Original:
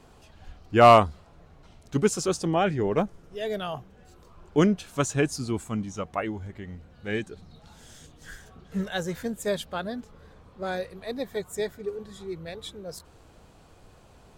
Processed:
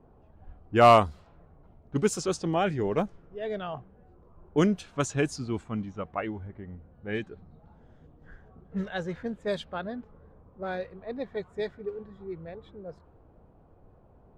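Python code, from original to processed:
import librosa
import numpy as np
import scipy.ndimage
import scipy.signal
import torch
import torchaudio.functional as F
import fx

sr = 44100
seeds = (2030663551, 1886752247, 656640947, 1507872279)

y = fx.env_lowpass(x, sr, base_hz=770.0, full_db=-19.5)
y = F.gain(torch.from_numpy(y), -2.5).numpy()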